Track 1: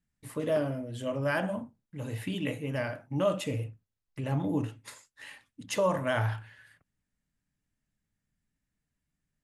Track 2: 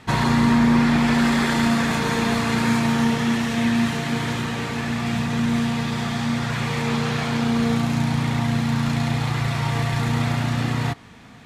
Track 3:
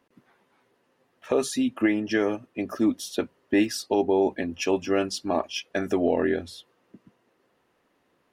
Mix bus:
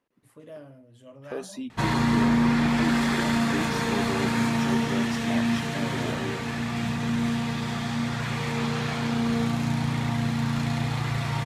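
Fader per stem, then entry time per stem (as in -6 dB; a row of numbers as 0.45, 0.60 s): -15.0, -4.5, -11.0 dB; 0.00, 1.70, 0.00 s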